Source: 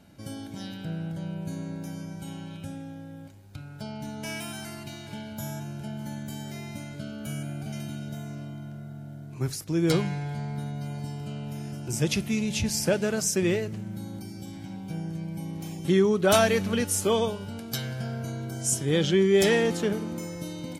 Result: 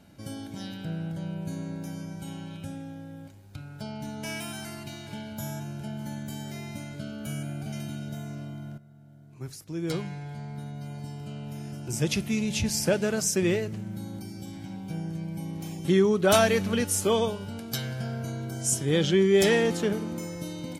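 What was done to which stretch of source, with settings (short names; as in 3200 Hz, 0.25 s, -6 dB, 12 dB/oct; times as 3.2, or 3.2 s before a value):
8.78–12.53 fade in, from -14 dB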